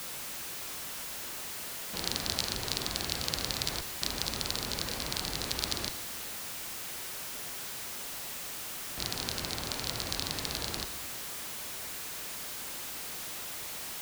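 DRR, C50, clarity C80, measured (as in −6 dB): 11.0 dB, 12.0 dB, 13.0 dB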